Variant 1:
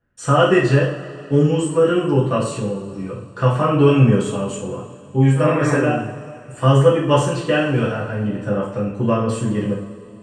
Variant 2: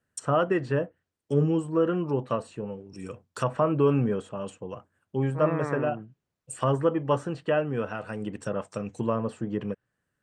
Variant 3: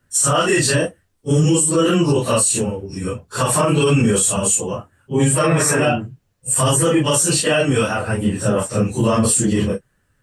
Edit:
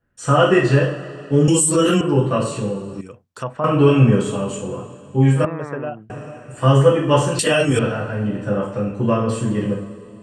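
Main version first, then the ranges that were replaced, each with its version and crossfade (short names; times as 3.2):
1
1.48–2.01 from 3
3.01–3.64 from 2
5.45–6.1 from 2
7.39–7.79 from 3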